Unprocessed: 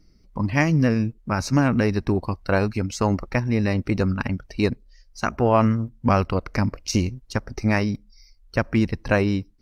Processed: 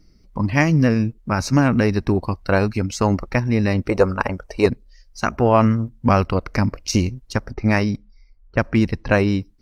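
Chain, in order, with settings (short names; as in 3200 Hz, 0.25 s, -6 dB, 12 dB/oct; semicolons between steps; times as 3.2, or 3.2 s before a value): 3.89–4.66 ten-band EQ 125 Hz -7 dB, 250 Hz -6 dB, 500 Hz +10 dB, 1000 Hz +7 dB, 4000 Hz -5 dB, 8000 Hz +6 dB; 7.53–9.3 low-pass opened by the level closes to 1200 Hz, open at -18 dBFS; gain +3 dB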